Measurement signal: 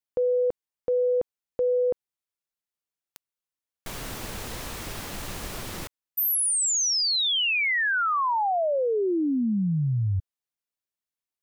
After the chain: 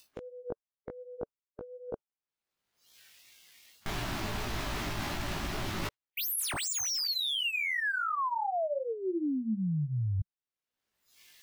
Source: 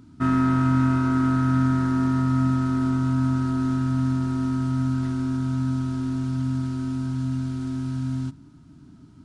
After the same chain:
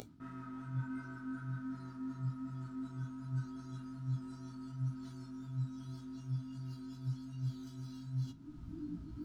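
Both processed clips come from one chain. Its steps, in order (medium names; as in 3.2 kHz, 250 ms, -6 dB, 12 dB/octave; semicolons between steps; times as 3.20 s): median filter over 5 samples; dynamic bell 230 Hz, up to +4 dB, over -37 dBFS, Q 5.6; in parallel at +1 dB: upward compressor, threshold -22 dBFS; on the sum: chorus 2.7 Hz, delay 16.5 ms, depth 2.4 ms; reverse; compression 5:1, threshold -31 dBFS; reverse; spectral noise reduction 15 dB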